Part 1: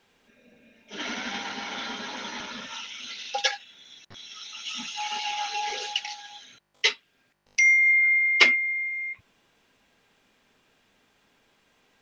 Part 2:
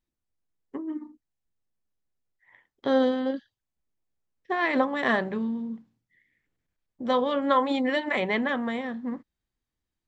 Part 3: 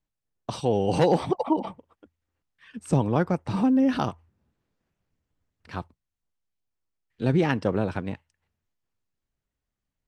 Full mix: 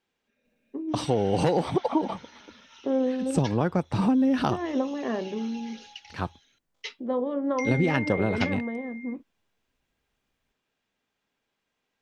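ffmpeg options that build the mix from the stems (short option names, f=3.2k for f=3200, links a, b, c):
-filter_complex "[0:a]volume=-15.5dB[a];[1:a]bandpass=f=340:t=q:w=1.4:csg=0,volume=1.5dB[b];[2:a]adelay=450,volume=3dB[c];[b][c]amix=inputs=2:normalize=0,acompressor=threshold=-19dB:ratio=6,volume=0dB[d];[a][d]amix=inputs=2:normalize=0"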